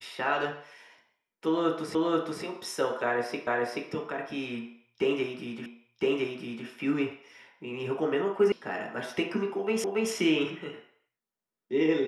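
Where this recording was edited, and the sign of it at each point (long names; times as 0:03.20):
0:01.95: the same again, the last 0.48 s
0:03.47: the same again, the last 0.43 s
0:05.66: the same again, the last 1.01 s
0:08.52: cut off before it has died away
0:09.84: the same again, the last 0.28 s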